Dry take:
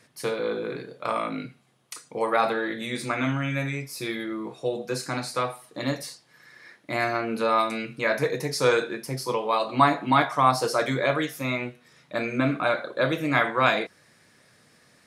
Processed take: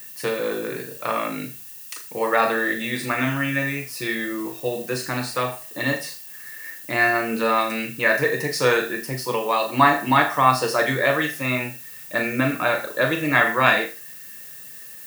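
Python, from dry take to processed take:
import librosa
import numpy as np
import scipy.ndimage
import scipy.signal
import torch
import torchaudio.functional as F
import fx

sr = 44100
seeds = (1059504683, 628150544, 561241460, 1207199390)

y = fx.room_flutter(x, sr, wall_m=6.8, rt60_s=0.28)
y = fx.dmg_noise_colour(y, sr, seeds[0], colour='violet', level_db=-42.0)
y = fx.small_body(y, sr, hz=(1800.0, 2700.0), ring_ms=35, db=15)
y = y * librosa.db_to_amplitude(2.0)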